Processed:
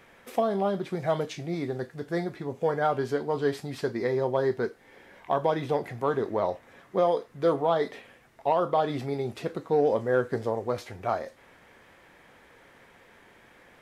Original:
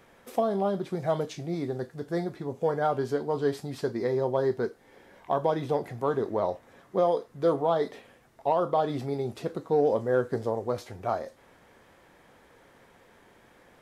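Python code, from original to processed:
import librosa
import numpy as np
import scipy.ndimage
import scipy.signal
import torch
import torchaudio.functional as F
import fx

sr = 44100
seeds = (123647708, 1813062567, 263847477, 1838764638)

y = fx.peak_eq(x, sr, hz=2200.0, db=6.0, octaves=1.3)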